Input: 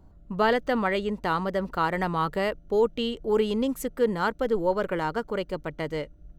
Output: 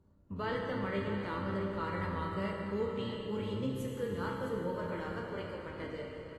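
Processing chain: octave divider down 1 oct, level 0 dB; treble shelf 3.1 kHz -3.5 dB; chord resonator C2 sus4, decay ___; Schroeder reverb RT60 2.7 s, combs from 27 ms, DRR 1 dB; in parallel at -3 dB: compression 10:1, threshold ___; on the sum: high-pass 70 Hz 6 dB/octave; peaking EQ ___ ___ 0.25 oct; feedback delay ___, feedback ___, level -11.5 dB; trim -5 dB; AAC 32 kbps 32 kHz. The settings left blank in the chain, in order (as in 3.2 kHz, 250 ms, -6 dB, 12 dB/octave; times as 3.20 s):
0.25 s, -38 dBFS, 740 Hz, -13.5 dB, 661 ms, 16%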